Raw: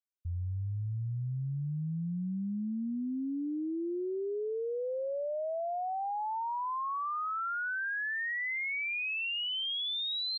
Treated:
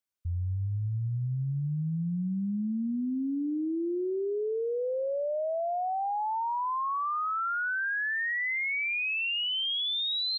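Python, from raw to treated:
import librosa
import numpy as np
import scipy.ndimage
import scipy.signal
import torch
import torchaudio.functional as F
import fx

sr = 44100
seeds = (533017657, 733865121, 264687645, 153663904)

y = x + 10.0 ** (-23.5 / 20.0) * np.pad(x, (int(244 * sr / 1000.0), 0))[:len(x)]
y = F.gain(torch.from_numpy(y), 4.0).numpy()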